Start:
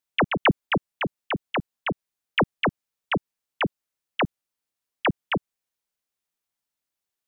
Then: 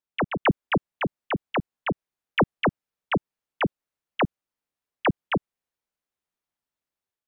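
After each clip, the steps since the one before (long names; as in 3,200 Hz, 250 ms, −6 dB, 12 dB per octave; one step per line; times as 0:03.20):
high-shelf EQ 2,900 Hz −10 dB
automatic gain control gain up to 5 dB
level −3.5 dB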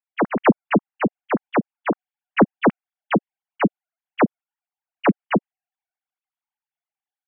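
three sine waves on the formant tracks
level +6 dB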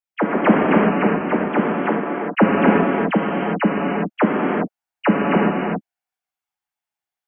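reverb whose tail is shaped and stops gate 430 ms flat, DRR −4 dB
level −1 dB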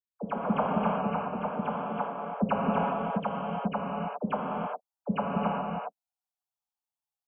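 phaser with its sweep stopped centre 790 Hz, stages 4
multiband delay without the direct sound lows, highs 120 ms, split 500 Hz
level −6 dB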